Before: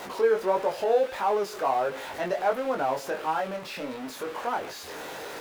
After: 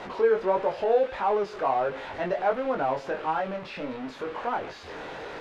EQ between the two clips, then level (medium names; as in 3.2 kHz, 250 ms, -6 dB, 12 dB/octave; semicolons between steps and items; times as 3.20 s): low-pass 3.4 kHz 12 dB/octave; bass shelf 100 Hz +11 dB; 0.0 dB